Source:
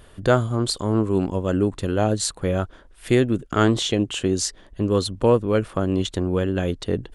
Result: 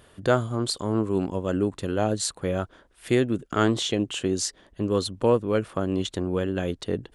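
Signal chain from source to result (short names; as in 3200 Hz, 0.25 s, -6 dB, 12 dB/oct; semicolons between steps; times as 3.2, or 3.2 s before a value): HPF 110 Hz 6 dB/oct; gain -3 dB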